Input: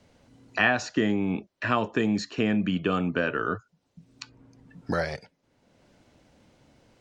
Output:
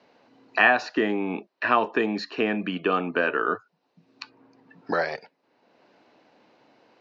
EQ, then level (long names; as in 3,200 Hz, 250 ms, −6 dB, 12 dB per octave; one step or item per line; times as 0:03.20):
loudspeaker in its box 420–4,100 Hz, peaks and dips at 560 Hz −5 dB, 1,400 Hz −4 dB, 2,100 Hz −5 dB, 3,300 Hz −9 dB
+7.5 dB